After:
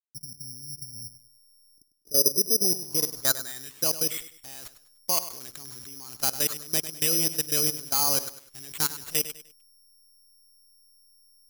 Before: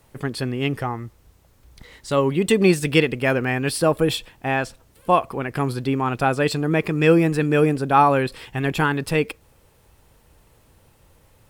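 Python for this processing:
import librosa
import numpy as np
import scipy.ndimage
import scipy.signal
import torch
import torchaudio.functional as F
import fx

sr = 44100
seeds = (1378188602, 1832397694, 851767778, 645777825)

y = fx.delta_hold(x, sr, step_db=-33.0)
y = fx.level_steps(y, sr, step_db=19)
y = fx.filter_sweep_lowpass(y, sr, from_hz=170.0, to_hz=4100.0, start_s=1.18, end_s=4.35, q=3.5)
y = fx.echo_feedback(y, sr, ms=100, feedback_pct=33, wet_db=-13.0)
y = (np.kron(y[::8], np.eye(8)[0]) * 8)[:len(y)]
y = y * 10.0 ** (-13.5 / 20.0)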